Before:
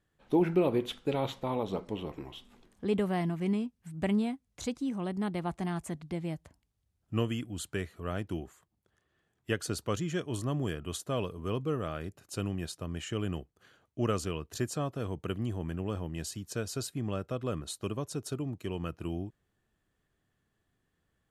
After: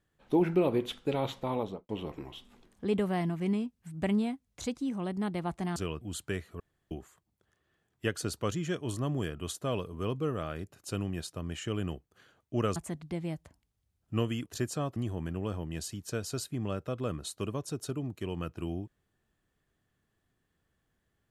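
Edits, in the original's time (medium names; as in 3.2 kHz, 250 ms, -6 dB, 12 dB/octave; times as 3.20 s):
1.59–1.89 s: studio fade out
5.76–7.46 s: swap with 14.21–14.46 s
8.05–8.36 s: room tone
14.96–15.39 s: delete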